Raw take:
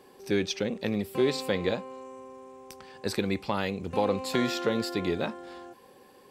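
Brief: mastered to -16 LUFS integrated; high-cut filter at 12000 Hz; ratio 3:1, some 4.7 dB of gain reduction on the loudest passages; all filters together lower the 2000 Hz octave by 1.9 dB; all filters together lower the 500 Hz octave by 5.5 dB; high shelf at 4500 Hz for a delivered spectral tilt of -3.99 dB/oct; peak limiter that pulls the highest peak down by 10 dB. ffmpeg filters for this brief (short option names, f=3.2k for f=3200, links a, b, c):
-af "lowpass=12k,equalizer=f=500:t=o:g=-7,equalizer=f=2k:t=o:g=-3.5,highshelf=f=4.5k:g=7.5,acompressor=threshold=-30dB:ratio=3,volume=23.5dB,alimiter=limit=-4dB:level=0:latency=1"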